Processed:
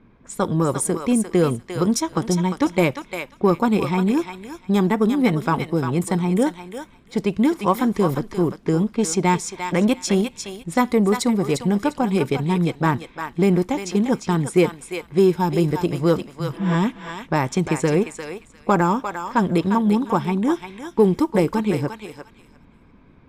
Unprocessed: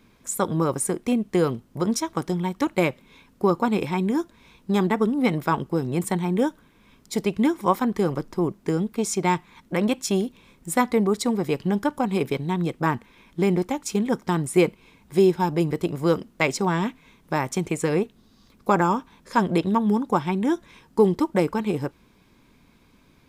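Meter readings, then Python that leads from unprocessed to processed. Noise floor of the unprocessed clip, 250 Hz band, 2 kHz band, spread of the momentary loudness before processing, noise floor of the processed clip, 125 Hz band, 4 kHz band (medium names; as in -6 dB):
-58 dBFS, +4.0 dB, +2.0 dB, 6 LU, -51 dBFS, +4.5 dB, +3.0 dB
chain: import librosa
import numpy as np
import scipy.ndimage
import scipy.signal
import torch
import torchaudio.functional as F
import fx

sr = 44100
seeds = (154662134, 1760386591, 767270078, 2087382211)

p1 = fx.high_shelf(x, sr, hz=8100.0, db=4.0)
p2 = fx.spec_repair(p1, sr, seeds[0], start_s=16.35, length_s=0.37, low_hz=200.0, high_hz=9200.0, source='both')
p3 = fx.env_lowpass(p2, sr, base_hz=1700.0, full_db=-18.5)
p4 = fx.low_shelf(p3, sr, hz=270.0, db=4.0)
p5 = p4 + fx.echo_thinned(p4, sr, ms=350, feedback_pct=19, hz=1100.0, wet_db=-5, dry=0)
p6 = fx.rider(p5, sr, range_db=3, speed_s=2.0)
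p7 = 10.0 ** (-21.0 / 20.0) * np.tanh(p6 / 10.0 ** (-21.0 / 20.0))
y = p6 + (p7 * librosa.db_to_amplitude(-10.0))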